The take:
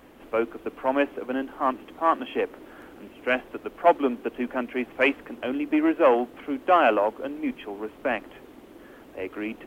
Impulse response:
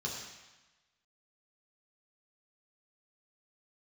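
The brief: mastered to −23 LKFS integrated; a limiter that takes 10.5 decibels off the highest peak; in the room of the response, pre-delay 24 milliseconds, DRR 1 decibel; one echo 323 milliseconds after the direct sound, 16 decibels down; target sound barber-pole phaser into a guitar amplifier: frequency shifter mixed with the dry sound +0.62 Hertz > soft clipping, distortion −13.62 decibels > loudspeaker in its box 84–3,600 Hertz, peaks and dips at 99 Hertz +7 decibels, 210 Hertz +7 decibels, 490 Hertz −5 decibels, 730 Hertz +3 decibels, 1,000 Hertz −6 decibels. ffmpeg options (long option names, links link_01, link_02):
-filter_complex "[0:a]alimiter=limit=-17.5dB:level=0:latency=1,aecho=1:1:323:0.158,asplit=2[link_01][link_02];[1:a]atrim=start_sample=2205,adelay=24[link_03];[link_02][link_03]afir=irnorm=-1:irlink=0,volume=-3.5dB[link_04];[link_01][link_04]amix=inputs=2:normalize=0,asplit=2[link_05][link_06];[link_06]afreqshift=0.62[link_07];[link_05][link_07]amix=inputs=2:normalize=1,asoftclip=threshold=-23dB,highpass=84,equalizer=frequency=99:width_type=q:width=4:gain=7,equalizer=frequency=210:width_type=q:width=4:gain=7,equalizer=frequency=490:width_type=q:width=4:gain=-5,equalizer=frequency=730:width_type=q:width=4:gain=3,equalizer=frequency=1000:width_type=q:width=4:gain=-6,lowpass=frequency=3600:width=0.5412,lowpass=frequency=3600:width=1.3066,volume=9dB"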